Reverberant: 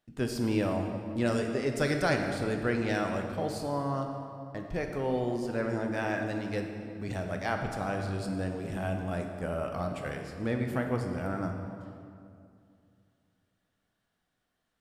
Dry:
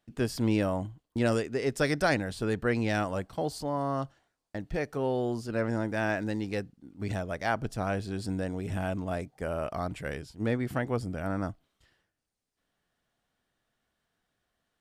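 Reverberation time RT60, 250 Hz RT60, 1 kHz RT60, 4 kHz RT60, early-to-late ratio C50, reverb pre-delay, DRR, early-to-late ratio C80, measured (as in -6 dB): 2.4 s, 2.8 s, 2.3 s, 1.6 s, 5.0 dB, 5 ms, 3.0 dB, 6.0 dB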